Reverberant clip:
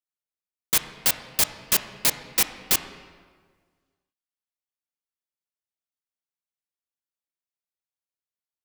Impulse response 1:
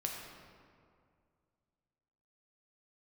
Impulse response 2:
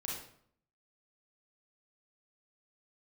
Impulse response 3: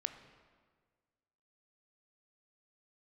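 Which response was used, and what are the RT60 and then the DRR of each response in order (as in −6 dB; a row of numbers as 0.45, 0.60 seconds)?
3; 2.2, 0.60, 1.6 seconds; −0.5, −4.0, 8.5 decibels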